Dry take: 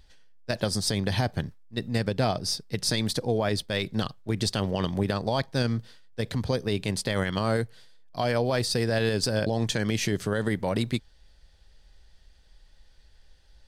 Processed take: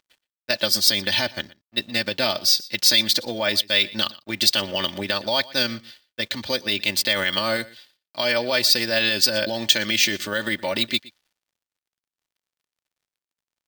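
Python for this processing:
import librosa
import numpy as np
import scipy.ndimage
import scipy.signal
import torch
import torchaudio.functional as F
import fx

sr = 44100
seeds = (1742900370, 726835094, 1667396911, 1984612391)

p1 = fx.weighting(x, sr, curve='D')
p2 = fx.env_lowpass(p1, sr, base_hz=2800.0, full_db=-23.0)
p3 = scipy.signal.sosfilt(scipy.signal.butter(2, 100.0, 'highpass', fs=sr, output='sos'), p2)
p4 = fx.peak_eq(p3, sr, hz=280.0, db=-5.5, octaves=0.73)
p5 = p4 + 0.77 * np.pad(p4, (int(3.4 * sr / 1000.0), 0))[:len(p4)]
p6 = np.sign(p5) * np.maximum(np.abs(p5) - 10.0 ** (-53.5 / 20.0), 0.0)
p7 = p6 + fx.echo_single(p6, sr, ms=119, db=-21.0, dry=0)
p8 = np.repeat(scipy.signal.resample_poly(p7, 1, 2), 2)[:len(p7)]
y = F.gain(torch.from_numpy(p8), 1.0).numpy()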